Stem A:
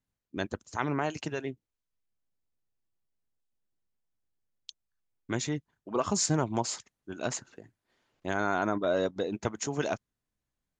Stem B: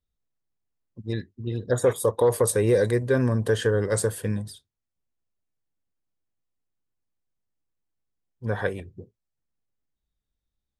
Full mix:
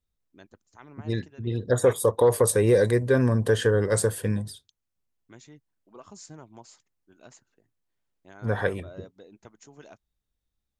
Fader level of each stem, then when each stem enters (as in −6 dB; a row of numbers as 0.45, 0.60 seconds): −18.0, +1.0 decibels; 0.00, 0.00 seconds